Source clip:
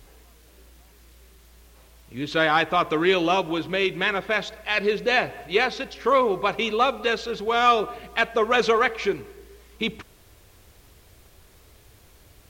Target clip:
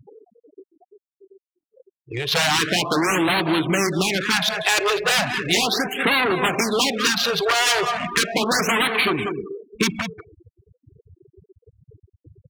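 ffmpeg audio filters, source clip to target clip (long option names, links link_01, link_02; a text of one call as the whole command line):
ffmpeg -i in.wav -filter_complex "[0:a]aeval=exprs='0.422*sin(PI/2*5.01*val(0)/0.422)':channel_layout=same,asplit=2[link_01][link_02];[link_02]aecho=0:1:190|380:0.266|0.0506[link_03];[link_01][link_03]amix=inputs=2:normalize=0,adynamicequalizer=threshold=0.0355:dfrequency=500:dqfactor=1.9:tfrequency=500:tqfactor=1.9:attack=5:release=100:ratio=0.375:range=4:mode=cutabove:tftype=bell,highpass=140,afftfilt=real='re*gte(hypot(re,im),0.0631)':imag='im*gte(hypot(re,im),0.0631)':win_size=1024:overlap=0.75,acompressor=threshold=-17dB:ratio=8,highshelf=frequency=5200:gain=7.5,adynamicsmooth=sensitivity=1.5:basefreq=2300,afftfilt=real='re*(1-between(b*sr/1024,200*pow(6500/200,0.5+0.5*sin(2*PI*0.36*pts/sr))/1.41,200*pow(6500/200,0.5+0.5*sin(2*PI*0.36*pts/sr))*1.41))':imag='im*(1-between(b*sr/1024,200*pow(6500/200,0.5+0.5*sin(2*PI*0.36*pts/sr))/1.41,200*pow(6500/200,0.5+0.5*sin(2*PI*0.36*pts/sr))*1.41))':win_size=1024:overlap=0.75" out.wav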